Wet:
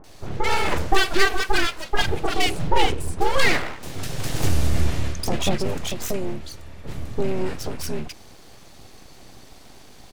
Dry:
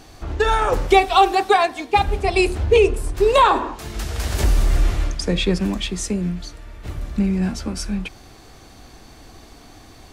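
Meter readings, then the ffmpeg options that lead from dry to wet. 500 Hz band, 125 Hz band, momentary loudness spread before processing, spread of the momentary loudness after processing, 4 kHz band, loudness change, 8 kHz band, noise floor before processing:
-8.0 dB, -3.0 dB, 14 LU, 13 LU, 0.0 dB, -5.0 dB, 0.0 dB, -45 dBFS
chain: -filter_complex "[0:a]aeval=exprs='abs(val(0))':c=same,acrossover=split=1300[s0][s1];[s1]adelay=40[s2];[s0][s2]amix=inputs=2:normalize=0"

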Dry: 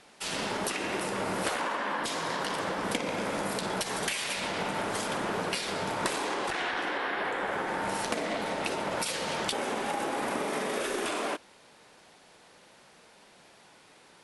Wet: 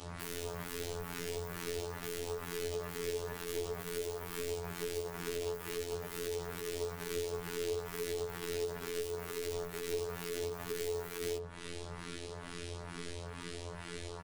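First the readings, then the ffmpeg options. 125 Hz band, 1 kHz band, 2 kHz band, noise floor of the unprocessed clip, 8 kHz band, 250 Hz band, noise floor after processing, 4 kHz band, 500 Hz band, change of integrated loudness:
-1.0 dB, -16.0 dB, -13.0 dB, -57 dBFS, -7.0 dB, -10.0 dB, -46 dBFS, -10.0 dB, -3.0 dB, -8.5 dB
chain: -filter_complex "[0:a]asplit=2[s0][s1];[s1]acompressor=threshold=0.00501:ratio=12,volume=1[s2];[s0][s2]amix=inputs=2:normalize=0,asplit=2[s3][s4];[s4]adelay=110.8,volume=0.0794,highshelf=f=4000:g=-2.49[s5];[s3][s5]amix=inputs=2:normalize=0,aeval=exprs='(mod(44.7*val(0)+1,2)-1)/44.7':c=same,aecho=1:1:3.7:0.31,asubboost=boost=10.5:cutoff=63,aeval=exprs='clip(val(0),-1,0.00668)':c=same,afreqshift=-450,lowshelf=f=190:g=9,acrossover=split=520|2100[s6][s7][s8];[s6]acompressor=threshold=0.00631:ratio=4[s9];[s7]acompressor=threshold=0.00282:ratio=4[s10];[s8]acompressor=threshold=0.00251:ratio=4[s11];[s9][s10][s11]amix=inputs=3:normalize=0,afftfilt=real='hypot(re,im)*cos(PI*b)':imag='0':win_size=2048:overlap=0.75,bandreject=f=50:t=h:w=6,bandreject=f=100:t=h:w=6,bandreject=f=150:t=h:w=6,bandreject=f=200:t=h:w=6,bandreject=f=250:t=h:w=6,bandreject=f=300:t=h:w=6,bandreject=f=350:t=h:w=6,asplit=2[s12][s13];[s13]adelay=11.5,afreqshift=2.2[s14];[s12][s14]amix=inputs=2:normalize=1,volume=3.35"

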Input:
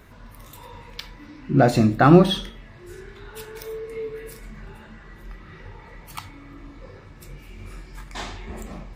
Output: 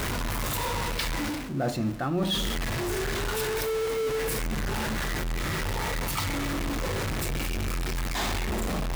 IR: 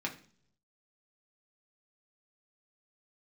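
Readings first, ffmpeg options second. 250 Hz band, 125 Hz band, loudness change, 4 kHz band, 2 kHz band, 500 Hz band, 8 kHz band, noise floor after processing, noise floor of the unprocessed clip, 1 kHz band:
-8.0 dB, -6.0 dB, -9.5 dB, +2.5 dB, +2.5 dB, -4.5 dB, +10.0 dB, -30 dBFS, -46 dBFS, -4.5 dB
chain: -af "aeval=exprs='val(0)+0.5*0.0631*sgn(val(0))':c=same,areverse,acompressor=threshold=0.0501:ratio=6,areverse"

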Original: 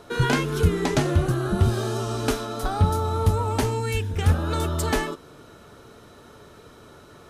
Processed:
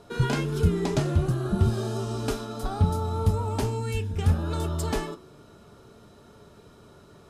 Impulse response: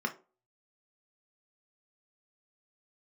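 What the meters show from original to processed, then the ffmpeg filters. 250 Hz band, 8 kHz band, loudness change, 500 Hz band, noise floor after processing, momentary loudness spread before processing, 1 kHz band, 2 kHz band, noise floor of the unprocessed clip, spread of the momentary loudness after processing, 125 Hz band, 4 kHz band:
-2.5 dB, -6.0 dB, -3.0 dB, -4.0 dB, -53 dBFS, 5 LU, -6.0 dB, -8.0 dB, -49 dBFS, 7 LU, -2.0 dB, -6.0 dB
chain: -filter_complex "[0:a]asplit=2[s0][s1];[1:a]atrim=start_sample=2205,highshelf=f=9000:g=11.5[s2];[s1][s2]afir=irnorm=-1:irlink=0,volume=0.251[s3];[s0][s3]amix=inputs=2:normalize=0,volume=0.631"

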